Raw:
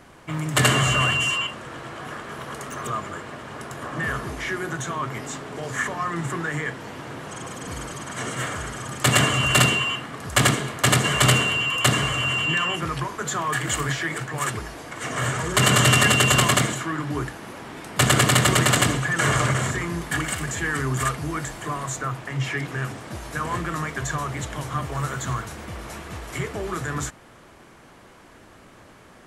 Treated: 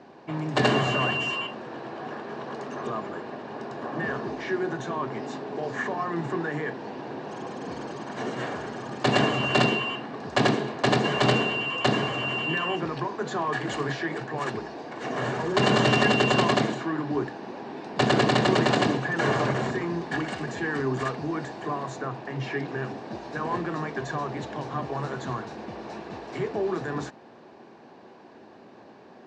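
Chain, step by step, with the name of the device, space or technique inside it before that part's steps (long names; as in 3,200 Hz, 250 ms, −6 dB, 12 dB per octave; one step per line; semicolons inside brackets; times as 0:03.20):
kitchen radio (loudspeaker in its box 190–4,500 Hz, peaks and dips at 230 Hz +4 dB, 390 Hz +5 dB, 790 Hz +5 dB, 1,300 Hz −10 dB, 2,100 Hz −9 dB, 3,200 Hz −9 dB)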